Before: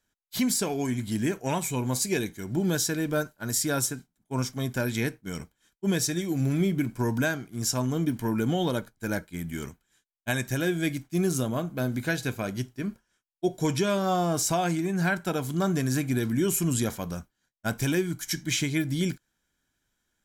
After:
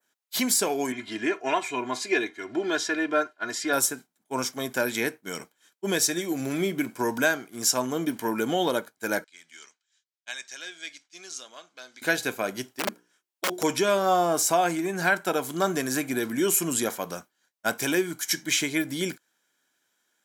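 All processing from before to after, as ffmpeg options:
ffmpeg -i in.wav -filter_complex "[0:a]asettb=1/sr,asplit=3[link_01][link_02][link_03];[link_01]atrim=end=0.924[link_04];[link_02]atrim=start=0.92:end=3.73,asetpts=PTS-STARTPTS,afade=type=in:duration=0.004:curve=qsin,afade=type=out:start_time=2.806:duration=0.004:curve=qsin,lowpass=2700,tiltshelf=frequency=1300:gain=-4.5,aecho=1:1:2.9:0.75,atrim=end_sample=123921[link_05];[link_03]atrim=start=3.726[link_06];[link_04][link_05]acrossfade=duration=0.004:curve1=hsin:curve2=qsin[link_07];[link_07][link_06]acrossfade=duration=0.004:curve1=qsin:curve2=hsin,asettb=1/sr,asplit=3[link_08][link_09][link_10];[link_08]atrim=end=9.244[link_11];[link_09]atrim=start=9.24:end=12.02,asetpts=PTS-STARTPTS,afade=type=in:duration=0.004:curve=qsin,afade=type=out:start_time=2.776:duration=0.004:curve=qsin,lowpass=frequency=5800:width=0.5412,lowpass=frequency=5800:width=1.3066,aderivative[link_12];[link_10]atrim=start=12.016[link_13];[link_11][link_12]acrossfade=duration=0.004:curve1=hsin:curve2=qsin[link_14];[link_14][link_13]acrossfade=duration=0.004:curve1=qsin:curve2=hsin,asettb=1/sr,asplit=3[link_15][link_16][link_17];[link_15]atrim=end=12.724[link_18];[link_16]atrim=start=12.72:end=13.63,asetpts=PTS-STARTPTS,afade=type=in:duration=0.004:curve=qsin,afade=type=out:start_time=0.906:duration=0.004:curve=qsin,bandreject=frequency=60:width_type=h:width=6,bandreject=frequency=120:width_type=h:width=6,bandreject=frequency=180:width_type=h:width=6,bandreject=frequency=240:width_type=h:width=6,bandreject=frequency=300:width_type=h:width=6,bandreject=frequency=360:width_type=h:width=6,bandreject=frequency=420:width_type=h:width=6,bandreject=frequency=480:width_type=h:width=6,aeval=exprs='(mod(16.8*val(0)+1,2)-1)/16.8':channel_layout=same[link_19];[link_17]atrim=start=13.626[link_20];[link_18][link_19]acrossfade=duration=0.004:curve1=hsin:curve2=qsin[link_21];[link_21][link_20]acrossfade=duration=0.004:curve1=qsin:curve2=hsin,highpass=380,adynamicequalizer=threshold=0.00631:dfrequency=4400:dqfactor=0.71:tfrequency=4400:tqfactor=0.71:attack=5:release=100:ratio=0.375:range=2.5:mode=cutabove:tftype=bell,volume=5.5dB" out.wav

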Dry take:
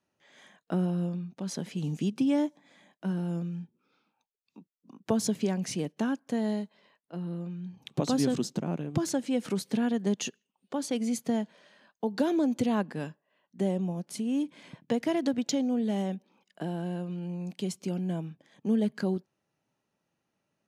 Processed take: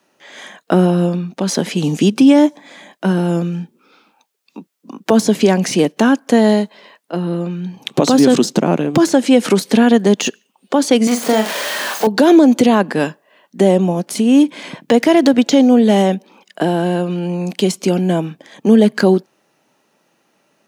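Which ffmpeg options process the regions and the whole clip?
ffmpeg -i in.wav -filter_complex "[0:a]asettb=1/sr,asplit=3[link_01][link_02][link_03];[link_01]atrim=end=11.074[link_04];[link_02]atrim=start=11.07:end=12.07,asetpts=PTS-STARTPTS,afade=type=in:duration=0.004:curve=qsin,afade=type=out:start_time=0.996:duration=0.004:curve=qsin,aeval=exprs='val(0)+0.5*0.0168*sgn(val(0))':channel_layout=same,highpass=frequency=540:poles=1,asplit=2[link_05][link_06];[link_06]adelay=41,volume=-7dB[link_07];[link_05][link_07]amix=inputs=2:normalize=0,atrim=end_sample=44100[link_08];[link_03]atrim=start=12.066[link_09];[link_04][link_08]acrossfade=duration=0.004:curve1=hsin:curve2=qsin[link_10];[link_10][link_09]acrossfade=duration=0.004:curve1=qsin:curve2=hsin,highpass=250,deesser=0.9,alimiter=level_in=22dB:limit=-1dB:release=50:level=0:latency=1,volume=-1dB" out.wav

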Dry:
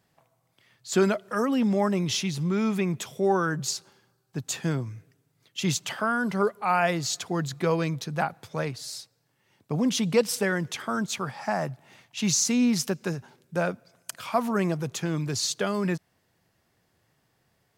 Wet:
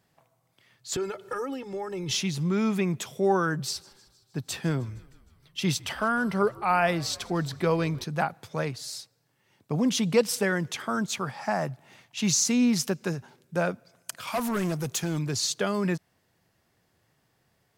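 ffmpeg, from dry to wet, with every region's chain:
ffmpeg -i in.wav -filter_complex "[0:a]asettb=1/sr,asplit=3[link_01][link_02][link_03];[link_01]atrim=end=0.964[link_04];[link_02]atrim=start=0.96:end=2.11,asetpts=PTS-STARTPTS,afade=type=in:duration=0.004:curve=qsin,afade=type=out:start_time=1.146:duration=0.004:curve=qsin,acompressor=threshold=-32dB:ratio=6:attack=3.2:release=140:knee=1:detection=peak,lowshelf=frequency=230:gain=6,aecho=1:1:2.3:0.98,atrim=end_sample=50715[link_05];[link_03]atrim=start=2.106[link_06];[link_04][link_05]acrossfade=duration=0.004:curve1=hsin:curve2=qsin[link_07];[link_07][link_06]acrossfade=duration=0.004:curve1=qsin:curve2=hsin,asettb=1/sr,asplit=3[link_08][link_09][link_10];[link_08]atrim=end=3.604[link_11];[link_09]atrim=start=3.6:end=8.04,asetpts=PTS-STARTPTS,afade=type=in:duration=0.004:curve=qsin,afade=type=out:start_time=4.436:duration=0.004:curve=qsin,bandreject=frequency=6800:width=5.1,asplit=6[link_12][link_13][link_14][link_15][link_16][link_17];[link_13]adelay=155,afreqshift=-62,volume=-23dB[link_18];[link_14]adelay=310,afreqshift=-124,volume=-26.9dB[link_19];[link_15]adelay=465,afreqshift=-186,volume=-30.8dB[link_20];[link_16]adelay=620,afreqshift=-248,volume=-34.6dB[link_21];[link_17]adelay=775,afreqshift=-310,volume=-38.5dB[link_22];[link_12][link_18][link_19][link_20][link_21][link_22]amix=inputs=6:normalize=0,atrim=end_sample=195804[link_23];[link_10]atrim=start=8.036[link_24];[link_11][link_23]acrossfade=duration=0.004:curve1=hsin:curve2=qsin[link_25];[link_25][link_24]acrossfade=duration=0.004:curve1=qsin:curve2=hsin,asettb=1/sr,asplit=3[link_26][link_27][link_28];[link_26]atrim=end=14.274[link_29];[link_27]atrim=start=14.27:end=15.19,asetpts=PTS-STARTPTS,afade=type=in:duration=0.004:curve=qsin,afade=type=out:start_time=0.916:duration=0.004:curve=qsin,highshelf=frequency=5000:gain=11,asoftclip=type=hard:threshold=-23.5dB[link_30];[link_28]atrim=start=15.186[link_31];[link_29][link_30]acrossfade=duration=0.004:curve1=hsin:curve2=qsin[link_32];[link_32][link_31]acrossfade=duration=0.004:curve1=qsin:curve2=hsin" out.wav

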